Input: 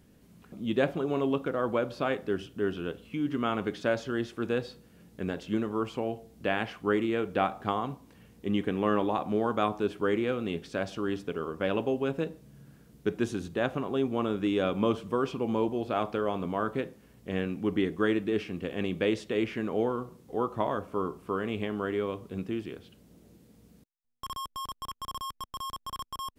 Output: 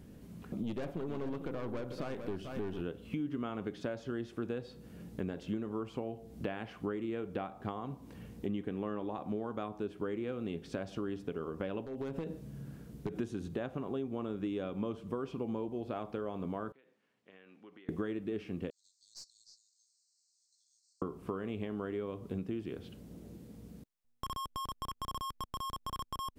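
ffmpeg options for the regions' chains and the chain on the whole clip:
-filter_complex "[0:a]asettb=1/sr,asplit=3[a][b][c];[a]atrim=end=0.634[d];[b]atrim=start=0.63:end=2.82,asetpts=PTS-STARTPTS,afade=t=in:d=0.004:c=qsin,afade=t=out:st=2.186:d=0.004:c=qsin,highshelf=f=8.1k:g=5.5,aeval=exprs='(tanh(31.6*val(0)+0.6)-tanh(0.6))/31.6':c=same,aecho=1:1:442:0.282,atrim=end_sample=96579[e];[c]atrim=start=2.816[f];[d][e]acrossfade=d=0.004:c1=hsin:c2=qsin[g];[g][f]acrossfade=d=0.004:c1=qsin:c2=hsin,asettb=1/sr,asplit=3[h][i][j];[h]atrim=end=11.854[k];[i]atrim=start=11.85:end=13.18,asetpts=PTS-STARTPTS,afade=t=in:d=0.004:c=qsin,afade=t=out:st=1.326:d=0.004:c=qsin,acompressor=threshold=-34dB:ratio=4:attack=3.2:release=140:knee=1:detection=peak,aeval=exprs='0.0282*(abs(mod(val(0)/0.0282+3,4)-2)-1)':c=same[l];[j]atrim=start=13.176[m];[k][l]acrossfade=d=0.004:c1=hsin:c2=qsin[n];[n][m]acrossfade=d=0.004:c1=qsin:c2=hsin,asettb=1/sr,asplit=3[o][p][q];[o]atrim=end=16.724[r];[p]atrim=start=16.72:end=17.89,asetpts=PTS-STARTPTS,afade=t=in:d=0.004:c=qsin,afade=t=out:st=1.166:d=0.004:c=qsin,aderivative,acompressor=threshold=-55dB:ratio=4:attack=3.2:release=140:knee=1:detection=peak,highpass=120,lowpass=2.2k[s];[q]atrim=start=17.886[t];[r][s]acrossfade=d=0.004:c1=hsin:c2=qsin[u];[u][t]acrossfade=d=0.004:c1=qsin:c2=hsin,asettb=1/sr,asplit=3[v][w][x];[v]atrim=end=18.704[y];[w]atrim=start=18.7:end=21.02,asetpts=PTS-STARTPTS,afade=t=in:d=0.004:c=qsin,afade=t=out:st=2.316:d=0.004:c=qsin,asuperpass=centerf=6000:order=20:qfactor=1.4,aeval=exprs='(tanh(89.1*val(0)+0.25)-tanh(0.25))/89.1':c=same[z];[x]atrim=start=21.016[aa];[y][z]acrossfade=d=0.004:c1=hsin:c2=qsin[ab];[ab][aa]acrossfade=d=0.004:c1=qsin:c2=hsin,acompressor=threshold=-41dB:ratio=6,tiltshelf=f=710:g=3.5,volume=4dB"

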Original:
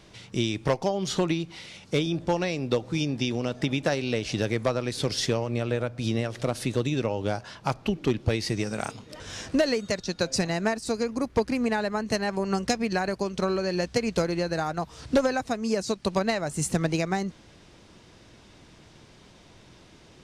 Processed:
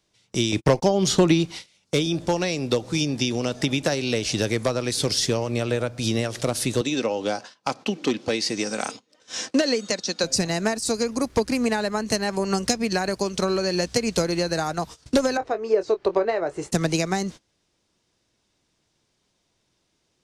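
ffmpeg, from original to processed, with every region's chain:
-filter_complex "[0:a]asettb=1/sr,asplit=3[a][b][c];[a]atrim=end=0.524[d];[b]atrim=start=0.52:end=1.47,asetpts=PTS-STARTPTS,afade=t=in:d=0.004:c=qsin,afade=t=out:st=0.946:d=0.004:c=qsin,highshelf=f=3.8k:g=-5,acontrast=53,agate=range=-52dB:threshold=-32dB:ratio=16:release=100:detection=peak[e];[c]atrim=start=1.466[f];[d][e]acrossfade=d=0.004:c1=hsin:c2=qsin[g];[g][f]acrossfade=d=0.004:c1=qsin:c2=hsin,asettb=1/sr,asplit=3[h][i][j];[h]atrim=end=6.814[k];[i]atrim=start=6.81:end=10.24,asetpts=PTS-STARTPTS,afade=t=in:d=0.004:c=qsin,afade=t=out:st=3.426:d=0.004:c=qsin,highpass=220,lowpass=7.2k,aecho=1:1:3.9:0.3,atrim=end_sample=151263[l];[j]atrim=start=10.236[m];[k][l]acrossfade=d=0.004:c1=hsin:c2=qsin[n];[n][m]acrossfade=d=0.004:c1=qsin:c2=hsin,asettb=1/sr,asplit=3[o][p][q];[o]atrim=end=15.374[r];[p]atrim=start=15.37:end=16.72,asetpts=PTS-STARTPTS,afade=t=in:d=0.004:c=qsin,afade=t=out:st=1.346:d=0.004:c=qsin,lowpass=1.8k,lowshelf=f=290:t=q:w=3:g=-8.5,asplit=2[s][t];[t]adelay=23,volume=-11dB[u];[s][u]amix=inputs=2:normalize=0,atrim=end_sample=59535[v];[q]atrim=start=16.716[w];[r][v]acrossfade=d=0.004:c1=hsin:c2=qsin[x];[x][w]acrossfade=d=0.004:c1=qsin:c2=hsin,agate=range=-24dB:threshold=-39dB:ratio=16:detection=peak,bass=f=250:g=-3,treble=f=4k:g=9,acrossover=split=410[y][z];[z]acompressor=threshold=-29dB:ratio=2[aa];[y][aa]amix=inputs=2:normalize=0,volume=4.5dB"

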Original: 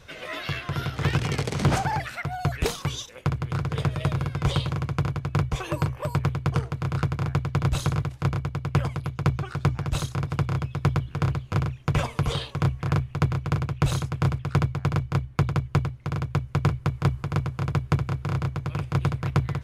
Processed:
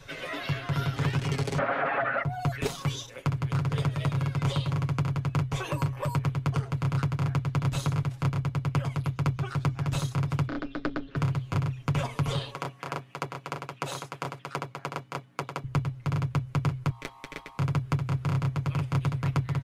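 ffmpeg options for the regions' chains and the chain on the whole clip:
-filter_complex "[0:a]asettb=1/sr,asplit=3[a][b][c];[a]atrim=end=1.584[d];[b]atrim=start=1.58:end=2.23,asetpts=PTS-STARTPTS,afade=t=in:d=0.004:c=qsin,afade=t=out:st=0.646:d=0.004:c=qsin,aeval=exprs='0.188*sin(PI/2*6.31*val(0)/0.188)':c=same,highpass=330,equalizer=f=370:t=q:w=4:g=-9,equalizer=f=610:t=q:w=4:g=4,equalizer=f=920:t=q:w=4:g=-6,equalizer=f=1.4k:t=q:w=4:g=6,lowpass=f=2.1k:w=0.5412,lowpass=f=2.1k:w=1.3066[e];[c]atrim=start=2.226[f];[d][e]acrossfade=d=0.004:c1=hsin:c2=qsin[g];[g][f]acrossfade=d=0.004:c1=qsin:c2=hsin,asettb=1/sr,asplit=3[h][i][j];[h]atrim=end=10.484[k];[i]atrim=start=10.48:end=11.16,asetpts=PTS-STARTPTS,afade=t=in:d=0.004:c=qsin,afade=t=out:st=0.676:d=0.004:c=qsin,highpass=180,equalizer=f=290:t=q:w=4:g=6,equalizer=f=450:t=q:w=4:g=8,equalizer=f=930:t=q:w=4:g=-5,equalizer=f=1.4k:t=q:w=4:g=7,equalizer=f=3.9k:t=q:w=4:g=5,lowpass=f=5.6k:w=0.5412,lowpass=f=5.6k:w=1.3066,aeval=exprs='val(0)*sin(2*PI*150*n/s)':c=same[l];[j]atrim=start=11.156[m];[k][l]acrossfade=d=0.004:c1=hsin:c2=qsin[n];[n][m]acrossfade=d=0.004:c1=qsin:c2=hsin,asettb=1/sr,asplit=3[o][p][q];[o]atrim=end=12.534[r];[p]atrim=start=12.53:end=15.64,asetpts=PTS-STARTPTS,afade=t=in:d=0.004:c=qsin,afade=t=out:st=3.106:d=0.004:c=qsin,highpass=450,aeval=exprs='val(0)+0.00141*(sin(2*PI*60*n/s)+sin(2*PI*2*60*n/s)/2+sin(2*PI*3*60*n/s)/3+sin(2*PI*4*60*n/s)/4+sin(2*PI*5*60*n/s)/5)':c=same[s];[q]atrim=start=15.636[t];[r][s]acrossfade=d=0.004:c1=hsin:c2=qsin[u];[u][t]acrossfade=d=0.004:c1=qsin:c2=hsin,asettb=1/sr,asplit=3[v][w][x];[v]atrim=end=16.904[y];[w]atrim=start=16.9:end=17.58,asetpts=PTS-STARTPTS,afade=t=in:d=0.004:c=qsin,afade=t=out:st=0.676:d=0.004:c=qsin,highpass=900,aeval=exprs='val(0)+0.00398*(sin(2*PI*60*n/s)+sin(2*PI*2*60*n/s)/2+sin(2*PI*3*60*n/s)/3+sin(2*PI*4*60*n/s)/4+sin(2*PI*5*60*n/s)/5)':c=same,aeval=exprs='val(0)*sin(2*PI*990*n/s)':c=same[z];[x]atrim=start=17.576[aa];[y][z]acrossfade=d=0.004:c1=hsin:c2=qsin[ab];[ab][aa]acrossfade=d=0.004:c1=qsin:c2=hsin,acrossover=split=94|1100[ac][ad][ae];[ac]acompressor=threshold=-38dB:ratio=4[af];[ad]acompressor=threshold=-29dB:ratio=4[ag];[ae]acompressor=threshold=-38dB:ratio=4[ah];[af][ag][ah]amix=inputs=3:normalize=0,bandreject=f=60:t=h:w=6,bandreject=f=120:t=h:w=6,aecho=1:1:7.3:0.71"

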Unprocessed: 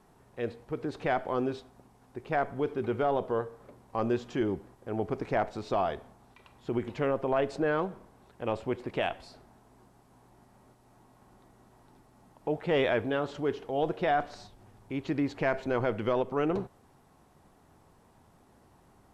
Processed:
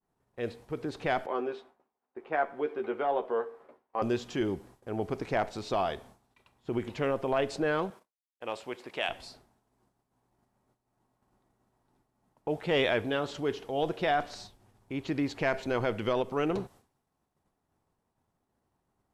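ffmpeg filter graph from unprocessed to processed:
-filter_complex "[0:a]asettb=1/sr,asplit=3[a][b][c];[a]atrim=end=1.264[d];[b]atrim=start=1.26:end=4.02,asetpts=PTS-STARTPTS,afade=t=in:d=0.004:c=qsin,afade=t=out:st=2.756:d=0.004:c=qsin,acrossover=split=280 2700:gain=0.0794 1 0.112[e][f][g];[e][f][g]amix=inputs=3:normalize=0,asplit=2[h][i];[i]adelay=13,volume=-6dB[j];[h][j]amix=inputs=2:normalize=0,atrim=end_sample=121716[k];[c]atrim=start=4.016[l];[d][k]acrossfade=d=0.004:c1=hsin:c2=qsin[m];[m][l]acrossfade=d=0.004:c1=qsin:c2=hsin,asettb=1/sr,asplit=3[n][o][p];[n]atrim=end=7.904[q];[o]atrim=start=7.9:end=9.09,asetpts=PTS-STARTPTS,afade=t=in:d=0.004:c=qsin,afade=t=out:st=1.186:d=0.004:c=qsin,highpass=f=700:p=1,agate=range=-21dB:threshold=-58dB:ratio=16:release=100:detection=peak[r];[p]atrim=start=9.086[s];[q][r]acrossfade=d=0.004:c1=hsin:c2=qsin[t];[t][s]acrossfade=d=0.004:c1=qsin:c2=hsin,agate=range=-33dB:threshold=-49dB:ratio=3:detection=peak,adynamicequalizer=threshold=0.00501:dfrequency=2300:dqfactor=0.7:tfrequency=2300:tqfactor=0.7:attack=5:release=100:ratio=0.375:range=4:mode=boostabove:tftype=highshelf,volume=-1dB"

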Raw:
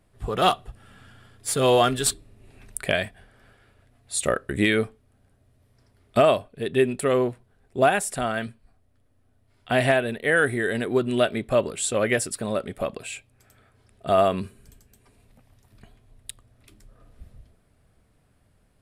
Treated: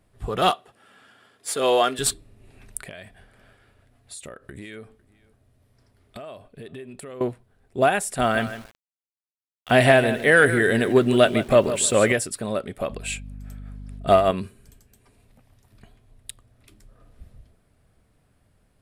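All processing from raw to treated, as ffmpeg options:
-filter_complex "[0:a]asettb=1/sr,asplit=3[a][b][c];[a]atrim=end=0.514[d];[b]atrim=start=0.51:end=1.99,asetpts=PTS-STARTPTS,afade=t=in:d=0.004:c=qsin,afade=t=out:st=1.476:d=0.004:c=qsin,highpass=330,highshelf=f=8.3k:g=-4[e];[c]atrim=start=1.986[f];[d][e]acrossfade=d=0.004:c1=hsin:c2=qsin[g];[g][f]acrossfade=d=0.004:c1=qsin:c2=hsin,asettb=1/sr,asplit=3[h][i][j];[h]atrim=end=2.824[k];[i]atrim=start=2.82:end=7.21,asetpts=PTS-STARTPTS,afade=t=in:d=0.004:c=qsin,afade=t=out:st=4.386:d=0.004:c=qsin,acompressor=threshold=-36dB:ratio=8:attack=3.2:release=140:knee=1:detection=peak,aecho=1:1:503:0.0631,atrim=end_sample=193599[l];[j]atrim=start=7.206[m];[k][l]acrossfade=d=0.004:c1=hsin:c2=qsin[n];[n][m]acrossfade=d=0.004:c1=qsin:c2=hsin,asettb=1/sr,asplit=3[o][p][q];[o]atrim=end=8.194[r];[p]atrim=start=8.19:end=12.12,asetpts=PTS-STARTPTS,afade=t=in:d=0.004:c=qsin,afade=t=out:st=3.926:d=0.004:c=qsin,acontrast=32,aecho=1:1:154|308|462:0.251|0.0502|0.01,atrim=end_sample=173313,aeval=exprs='val(0)*gte(abs(val(0)),0.00841)':c=same[s];[q]atrim=start=12.116[t];[r][s]acrossfade=d=0.004:c1=hsin:c2=qsin[u];[u][t]acrossfade=d=0.004:c1=qsin:c2=hsin,asettb=1/sr,asplit=3[v][w][x];[v]atrim=end=12.904[y];[w]atrim=start=12.9:end=14.31,asetpts=PTS-STARTPTS,afade=t=in:d=0.004:c=qsin,afade=t=out:st=1.406:d=0.004:c=qsin,acontrast=54,tremolo=f=4.9:d=0.65,aeval=exprs='val(0)+0.0158*(sin(2*PI*50*n/s)+sin(2*PI*2*50*n/s)/2+sin(2*PI*3*50*n/s)/3+sin(2*PI*4*50*n/s)/4+sin(2*PI*5*50*n/s)/5)':c=same[z];[x]atrim=start=14.306[aa];[y][z]acrossfade=d=0.004:c1=hsin:c2=qsin[ab];[ab][aa]acrossfade=d=0.004:c1=qsin:c2=hsin"

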